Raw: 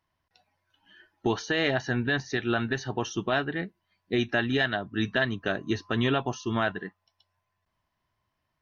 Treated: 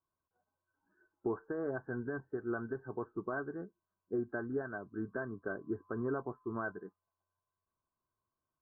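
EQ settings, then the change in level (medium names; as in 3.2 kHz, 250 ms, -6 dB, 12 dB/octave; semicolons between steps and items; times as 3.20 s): rippled Chebyshev low-pass 1.6 kHz, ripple 9 dB; -6.0 dB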